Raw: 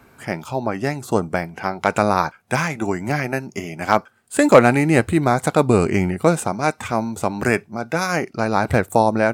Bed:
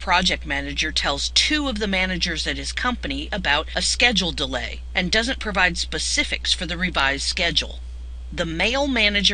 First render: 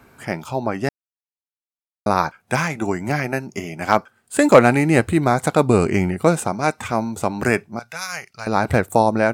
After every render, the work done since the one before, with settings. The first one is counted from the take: 0.89–2.06 mute; 7.79–8.47 passive tone stack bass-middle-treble 10-0-10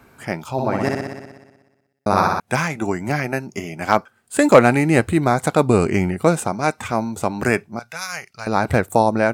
0.52–2.4 flutter echo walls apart 10.5 m, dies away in 1.2 s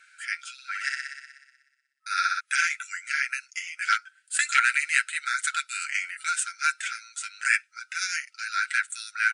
FFT band-pass 1300–10000 Hz; comb 7.2 ms, depth 61%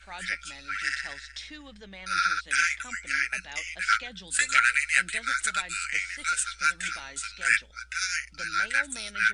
add bed -23 dB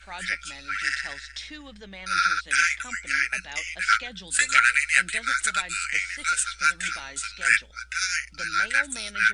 gain +3 dB

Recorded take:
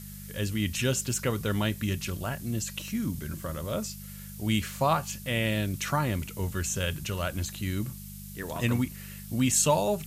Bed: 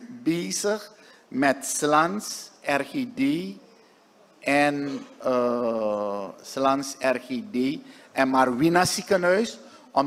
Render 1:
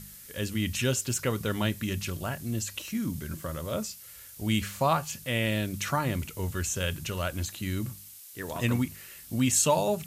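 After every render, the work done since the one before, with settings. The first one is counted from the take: de-hum 50 Hz, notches 4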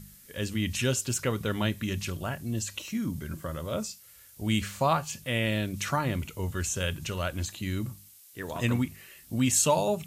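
noise print and reduce 6 dB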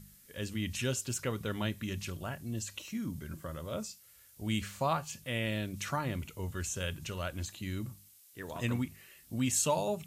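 gain -6 dB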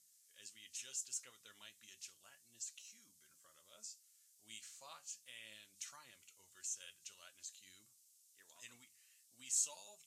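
band-pass 6900 Hz, Q 1.6; flange 1.5 Hz, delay 7.4 ms, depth 3.5 ms, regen +58%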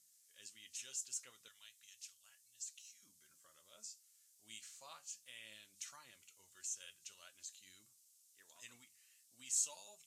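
1.48–3.03 passive tone stack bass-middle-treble 10-0-10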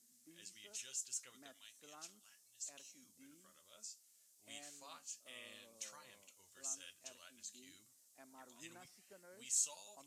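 add bed -40.5 dB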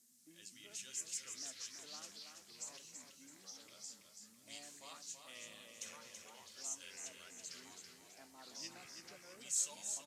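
echoes that change speed 0.183 s, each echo -4 st, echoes 2, each echo -6 dB; feedback echo 0.33 s, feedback 40%, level -6.5 dB

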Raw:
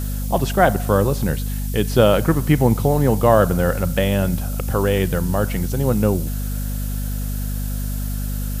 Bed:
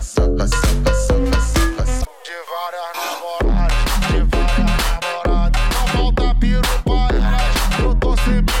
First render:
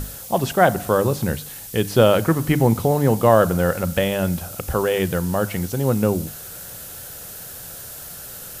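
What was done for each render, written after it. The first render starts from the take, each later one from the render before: notches 50/100/150/200/250/300 Hz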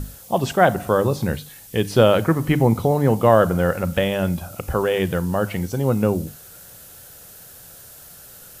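noise print and reduce 7 dB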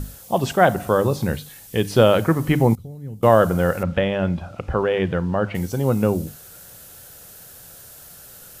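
2.75–3.23 passive tone stack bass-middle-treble 10-0-1; 3.83–5.55 LPF 3100 Hz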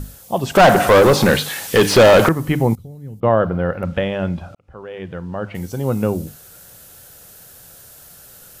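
0.55–2.29 overdrive pedal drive 29 dB, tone 3000 Hz, clips at -2 dBFS; 3.2–3.83 air absorption 340 m; 4.55–5.96 fade in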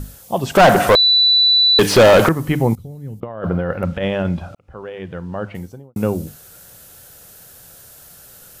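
0.95–1.79 bleep 3970 Hz -9.5 dBFS; 2.76–4.9 negative-ratio compressor -20 dBFS, ratio -0.5; 5.41–5.96 studio fade out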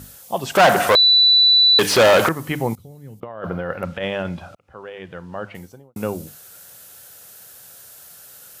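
HPF 71 Hz; low shelf 480 Hz -9 dB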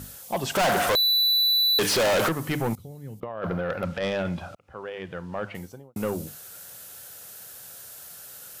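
soft clip -20 dBFS, distortion -7 dB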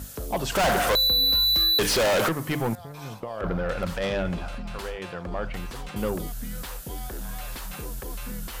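add bed -20 dB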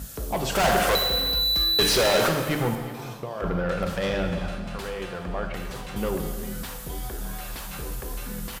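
echo 0.359 s -17.5 dB; non-linear reverb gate 0.5 s falling, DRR 4.5 dB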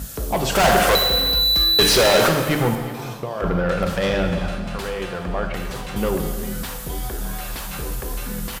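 gain +5.5 dB

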